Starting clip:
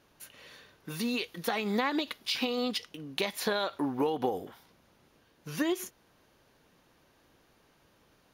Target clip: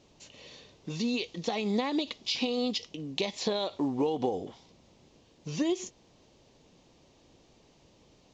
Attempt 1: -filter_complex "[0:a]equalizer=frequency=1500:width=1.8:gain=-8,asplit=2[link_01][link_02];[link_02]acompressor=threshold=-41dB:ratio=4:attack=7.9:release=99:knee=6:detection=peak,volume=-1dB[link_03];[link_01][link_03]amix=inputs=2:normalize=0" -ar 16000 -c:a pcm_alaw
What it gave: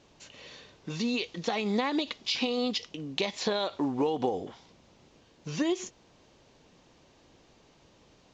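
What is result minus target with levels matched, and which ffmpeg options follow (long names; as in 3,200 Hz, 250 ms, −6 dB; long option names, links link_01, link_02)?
2,000 Hz band +3.0 dB
-filter_complex "[0:a]equalizer=frequency=1500:width=1.8:gain=-18,asplit=2[link_01][link_02];[link_02]acompressor=threshold=-41dB:ratio=4:attack=7.9:release=99:knee=6:detection=peak,volume=-1dB[link_03];[link_01][link_03]amix=inputs=2:normalize=0" -ar 16000 -c:a pcm_alaw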